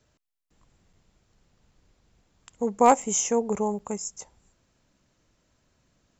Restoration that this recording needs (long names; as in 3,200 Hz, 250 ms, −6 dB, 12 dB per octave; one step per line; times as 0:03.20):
clipped peaks rebuilt −7 dBFS
repair the gap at 0:00.93/0:03.02/0:03.79, 4.2 ms